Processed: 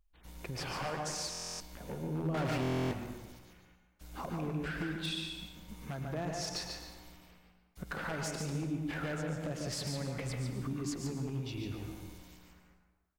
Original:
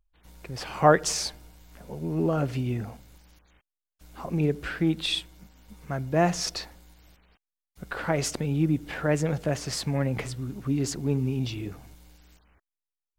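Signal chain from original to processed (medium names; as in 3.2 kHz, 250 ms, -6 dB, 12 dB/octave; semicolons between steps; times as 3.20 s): compression 5:1, threshold -37 dBFS, peak gain reduction 22 dB; 2.34–2.79 s: overdrive pedal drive 38 dB, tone 1.9 kHz, clips at -28 dBFS; delay 144 ms -5.5 dB; wavefolder -30 dBFS; reverberation RT60 1.2 s, pre-delay 97 ms, DRR 5 dB; buffer glitch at 1.30/2.61 s, samples 1024, times 12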